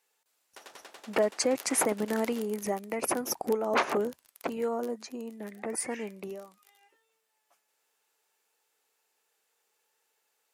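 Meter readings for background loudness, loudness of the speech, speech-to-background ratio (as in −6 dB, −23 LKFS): −50.0 LKFS, −31.0 LKFS, 19.0 dB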